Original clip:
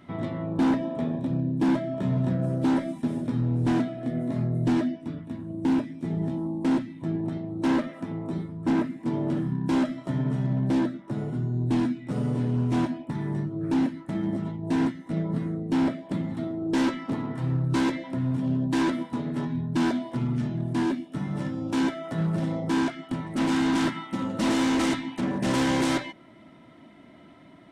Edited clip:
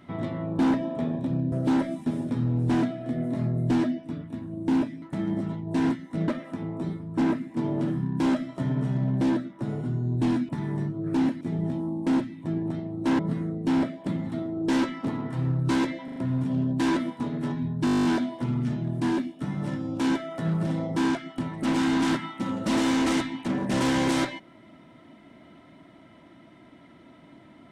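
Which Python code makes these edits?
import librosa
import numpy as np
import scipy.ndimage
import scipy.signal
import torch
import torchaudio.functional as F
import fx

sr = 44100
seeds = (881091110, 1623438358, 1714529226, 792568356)

y = fx.edit(x, sr, fx.cut(start_s=1.52, length_s=0.97),
    fx.swap(start_s=5.99, length_s=1.78, other_s=13.98, other_length_s=1.26),
    fx.cut(start_s=11.98, length_s=1.08),
    fx.stutter(start_s=18.09, slice_s=0.04, count=4),
    fx.stutter(start_s=19.78, slice_s=0.02, count=11), tone=tone)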